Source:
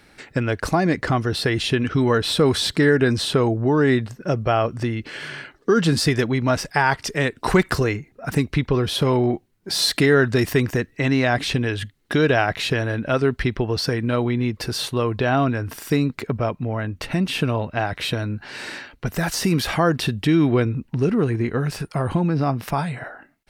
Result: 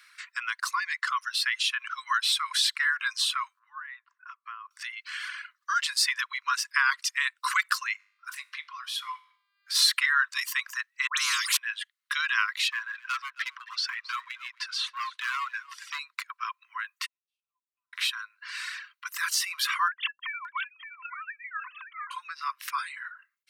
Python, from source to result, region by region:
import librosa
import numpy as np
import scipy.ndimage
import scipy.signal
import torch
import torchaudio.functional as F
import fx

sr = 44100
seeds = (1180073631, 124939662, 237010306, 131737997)

y = fx.chain(x, sr, fx.ladder_bandpass(hz=980.0, resonance_pct=35),
    fx.band_squash(depth_pct=70), at=(3.59, 4.71))
y = fx.comb_fb(y, sr, f0_hz=51.0, decay_s=0.55, harmonics='all', damping=0.0, mix_pct=70, at=(7.98, 9.74), fade=0.02)
y = fx.dmg_buzz(y, sr, base_hz=400.0, harmonics=12, level_db=-61.0, tilt_db=-5, odd_only=False, at=(7.98, 9.74), fade=0.02)
y = fx.chain(y, sr, fx.highpass(hz=330.0, slope=6),
    fx.dispersion(late='highs', ms=104.0, hz=1400.0),
    fx.spectral_comp(ratio=4.0), at=(11.07, 11.57))
y = fx.chain(y, sr, fx.lowpass(hz=4600.0, slope=12),
    fx.clip_hard(threshold_db=-18.0),
    fx.echo_single(ms=267, db=-13.5), at=(12.68, 15.99))
y = fx.chain(y, sr, fx.cheby2_lowpass(hz=630.0, order=4, stop_db=50),
    fx.comb(ms=5.9, depth=0.68), at=(17.06, 17.93))
y = fx.chain(y, sr, fx.sine_speech(),
    fx.echo_single(ms=569, db=-9.0), at=(19.88, 22.11))
y = scipy.signal.sosfilt(scipy.signal.cheby1(10, 1.0, 1000.0, 'highpass', fs=sr, output='sos'), y)
y = fx.dereverb_blind(y, sr, rt60_s=1.0)